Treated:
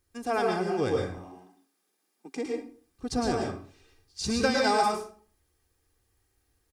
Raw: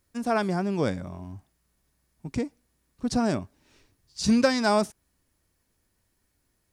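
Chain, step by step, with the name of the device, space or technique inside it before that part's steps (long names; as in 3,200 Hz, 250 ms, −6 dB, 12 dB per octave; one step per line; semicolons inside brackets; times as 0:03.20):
0:01.04–0:02.46: Butterworth high-pass 200 Hz 48 dB per octave
microphone above a desk (comb filter 2.5 ms, depth 58%; convolution reverb RT60 0.45 s, pre-delay 103 ms, DRR −0.5 dB)
level −4 dB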